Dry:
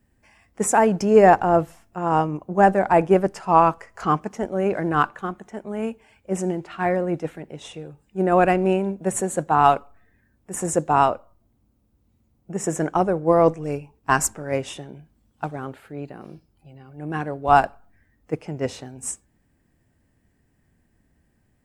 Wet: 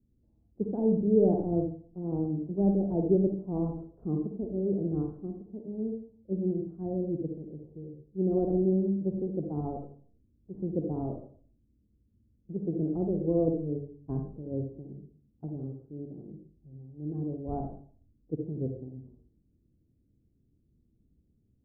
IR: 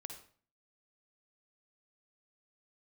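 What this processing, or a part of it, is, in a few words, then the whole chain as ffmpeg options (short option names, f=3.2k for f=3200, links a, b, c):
next room: -filter_complex "[0:a]lowpass=f=400:w=0.5412,lowpass=f=400:w=1.3066[a];[1:a]atrim=start_sample=2205[b];[a][b]afir=irnorm=-1:irlink=0"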